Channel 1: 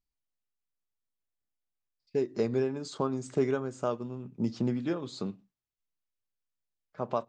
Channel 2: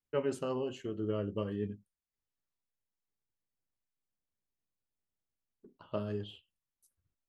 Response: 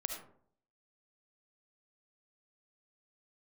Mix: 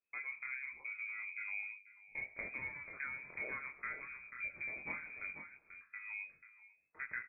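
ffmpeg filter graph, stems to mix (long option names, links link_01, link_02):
-filter_complex "[0:a]equalizer=frequency=1700:width=0.39:gain=12,acompressor=threshold=-25dB:ratio=3,aexciter=amount=11.2:drive=4.3:freq=2500,volume=-13.5dB,asplit=4[link_01][link_02][link_03][link_04];[link_02]volume=-9dB[link_05];[link_03]volume=-6dB[link_06];[1:a]acompressor=threshold=-37dB:ratio=6,volume=0.5dB,asplit=2[link_07][link_08];[link_08]volume=-17dB[link_09];[link_04]apad=whole_len=321338[link_10];[link_07][link_10]sidechaincompress=threshold=-59dB:ratio=4:attack=25:release=501[link_11];[2:a]atrim=start_sample=2205[link_12];[link_05][link_12]afir=irnorm=-1:irlink=0[link_13];[link_06][link_09]amix=inputs=2:normalize=0,aecho=0:1:489:1[link_14];[link_01][link_11][link_13][link_14]amix=inputs=4:normalize=0,bandreject=frequency=440:width=13,flanger=delay=20:depth=5:speed=1.3,lowpass=frequency=2200:width_type=q:width=0.5098,lowpass=frequency=2200:width_type=q:width=0.6013,lowpass=frequency=2200:width_type=q:width=0.9,lowpass=frequency=2200:width_type=q:width=2.563,afreqshift=-2600"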